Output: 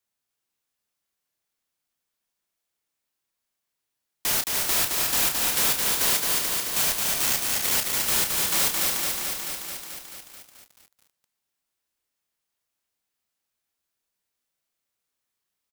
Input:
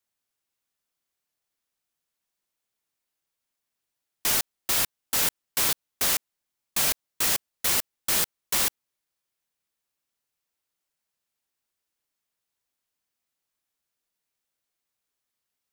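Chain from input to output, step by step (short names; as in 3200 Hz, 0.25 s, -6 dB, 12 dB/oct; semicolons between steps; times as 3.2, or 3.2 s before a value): 6.91–7.72 cycle switcher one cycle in 3, muted; in parallel at -7.5 dB: wavefolder -19.5 dBFS; on the sum: doubler 30 ms -7 dB; feedback echo 0.288 s, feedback 20%, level -5.5 dB; lo-fi delay 0.218 s, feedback 80%, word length 7-bit, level -3 dB; gain -3.5 dB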